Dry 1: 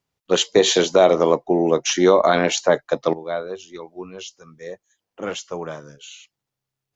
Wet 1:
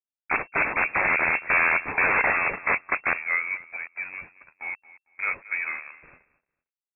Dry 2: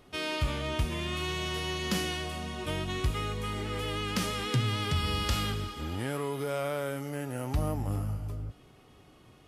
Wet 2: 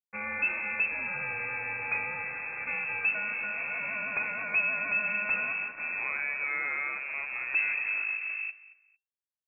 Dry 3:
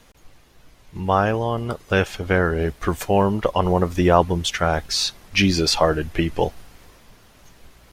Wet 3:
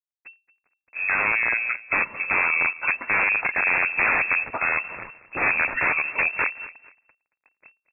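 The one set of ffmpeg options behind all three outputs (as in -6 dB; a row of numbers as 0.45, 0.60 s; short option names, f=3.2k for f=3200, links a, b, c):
-filter_complex "[0:a]aeval=exprs='(mod(5.01*val(0)+1,2)-1)/5.01':c=same,acrusher=bits=5:mix=0:aa=0.5,asplit=2[a][b];[b]aecho=0:1:226|452:0.126|0.0277[c];[a][c]amix=inputs=2:normalize=0,lowpass=f=2.3k:t=q:w=0.5098,lowpass=f=2.3k:t=q:w=0.6013,lowpass=f=2.3k:t=q:w=0.9,lowpass=f=2.3k:t=q:w=2.563,afreqshift=-2700"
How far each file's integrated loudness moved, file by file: -5.5, +2.5, -0.5 LU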